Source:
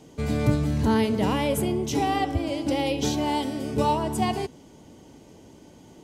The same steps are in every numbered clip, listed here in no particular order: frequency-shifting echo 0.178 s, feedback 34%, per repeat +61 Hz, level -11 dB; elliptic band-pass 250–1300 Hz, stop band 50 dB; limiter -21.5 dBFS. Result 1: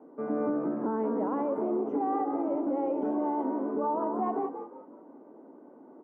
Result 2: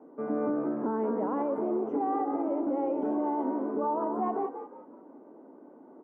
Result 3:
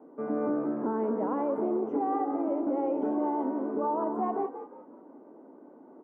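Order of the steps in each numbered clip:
frequency-shifting echo > elliptic band-pass > limiter; elliptic band-pass > frequency-shifting echo > limiter; elliptic band-pass > limiter > frequency-shifting echo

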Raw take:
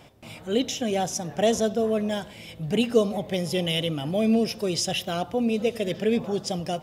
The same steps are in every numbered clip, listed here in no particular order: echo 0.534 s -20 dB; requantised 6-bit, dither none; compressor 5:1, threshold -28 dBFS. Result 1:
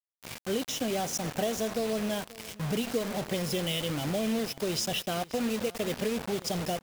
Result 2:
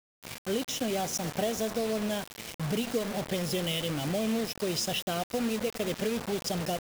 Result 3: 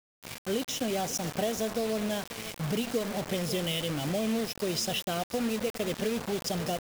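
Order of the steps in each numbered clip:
compressor > requantised > echo; compressor > echo > requantised; echo > compressor > requantised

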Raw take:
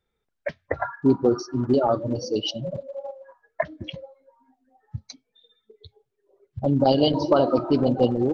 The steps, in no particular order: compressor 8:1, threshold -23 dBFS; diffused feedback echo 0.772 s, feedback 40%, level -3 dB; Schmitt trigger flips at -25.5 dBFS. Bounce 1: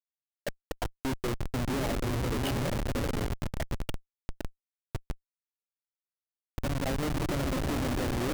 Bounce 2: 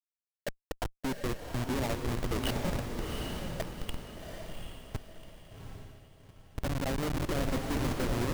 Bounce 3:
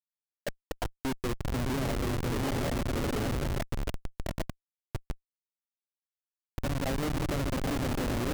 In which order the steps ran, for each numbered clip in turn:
compressor > diffused feedback echo > Schmitt trigger; compressor > Schmitt trigger > diffused feedback echo; diffused feedback echo > compressor > Schmitt trigger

